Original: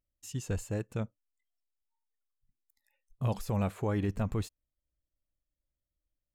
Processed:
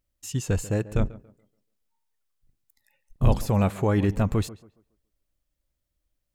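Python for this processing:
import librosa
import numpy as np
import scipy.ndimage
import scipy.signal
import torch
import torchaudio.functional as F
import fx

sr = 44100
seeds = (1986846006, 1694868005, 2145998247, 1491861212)

y = fx.octave_divider(x, sr, octaves=2, level_db=2.0, at=(0.86, 3.43))
y = fx.echo_tape(y, sr, ms=141, feedback_pct=34, wet_db=-15.0, lp_hz=1900.0, drive_db=23.0, wow_cents=27)
y = y * 10.0 ** (8.5 / 20.0)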